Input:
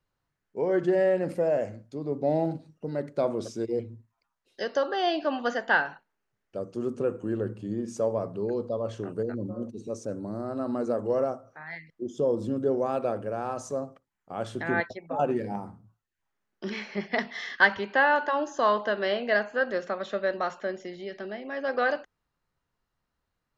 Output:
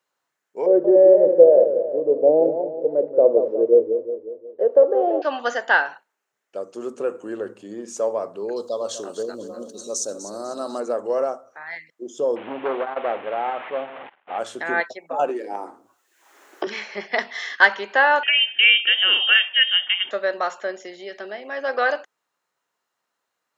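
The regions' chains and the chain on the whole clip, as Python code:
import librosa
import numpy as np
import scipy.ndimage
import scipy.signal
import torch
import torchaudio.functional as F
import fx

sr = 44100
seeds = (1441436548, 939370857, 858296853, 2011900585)

y = fx.chain(x, sr, fx.cvsd(bps=32000),
    fx.lowpass_res(hz=490.0, q=4.9),
    fx.echo_warbled(ms=181, feedback_pct=53, rate_hz=2.8, cents=135, wet_db=-8.5), at=(0.66, 5.22))
y = fx.chain(y, sr, fx.curve_eq(hz=(1300.0, 2200.0, 3800.0), db=(0, -10, 13)),
    fx.echo_feedback(ms=248, feedback_pct=36, wet_db=-12), at=(8.56, 10.8))
y = fx.chain(y, sr, fx.delta_mod(bps=16000, step_db=-36.0),
    fx.peak_eq(hz=800.0, db=6.5, octaves=0.49),
    fx.transformer_sat(knee_hz=620.0), at=(12.36, 14.39))
y = fx.chain(y, sr, fx.low_shelf_res(hz=230.0, db=-9.5, q=3.0),
    fx.band_squash(depth_pct=100), at=(15.29, 16.67))
y = fx.chain(y, sr, fx.low_shelf(hz=340.0, db=10.5),
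    fx.freq_invert(carrier_hz=3400), at=(18.23, 20.11))
y = scipy.signal.sosfilt(scipy.signal.butter(2, 460.0, 'highpass', fs=sr, output='sos'), y)
y = fx.peak_eq(y, sr, hz=7100.0, db=5.5, octaves=0.39)
y = fx.notch(y, sr, hz=4700.0, q=27.0)
y = y * librosa.db_to_amplitude(6.0)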